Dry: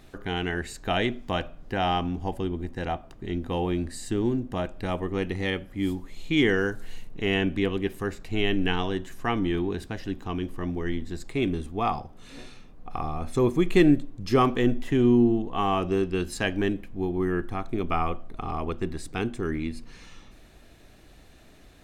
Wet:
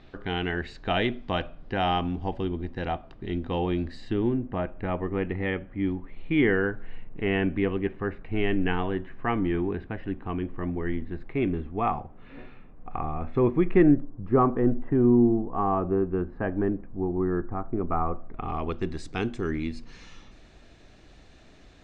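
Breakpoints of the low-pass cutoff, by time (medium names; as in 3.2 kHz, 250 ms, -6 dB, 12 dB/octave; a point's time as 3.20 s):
low-pass 24 dB/octave
3.92 s 4.4 kHz
4.50 s 2.4 kHz
13.55 s 2.4 kHz
14.10 s 1.4 kHz
18.12 s 1.4 kHz
18.48 s 3.2 kHz
18.89 s 6.9 kHz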